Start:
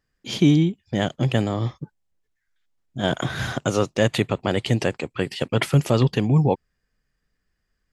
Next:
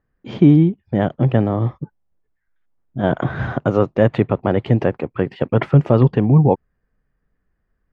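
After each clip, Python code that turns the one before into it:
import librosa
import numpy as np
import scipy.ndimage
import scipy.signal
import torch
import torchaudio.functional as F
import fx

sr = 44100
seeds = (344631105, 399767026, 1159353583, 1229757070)

y = scipy.signal.sosfilt(scipy.signal.butter(2, 1300.0, 'lowpass', fs=sr, output='sos'), x)
y = y * librosa.db_to_amplitude(5.5)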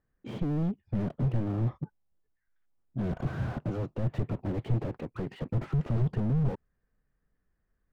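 y = fx.slew_limit(x, sr, full_power_hz=21.0)
y = y * librosa.db_to_amplitude(-7.0)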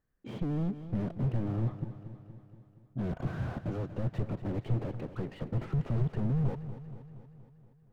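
y = fx.echo_feedback(x, sr, ms=236, feedback_pct=60, wet_db=-12.5)
y = y * librosa.db_to_amplitude(-2.5)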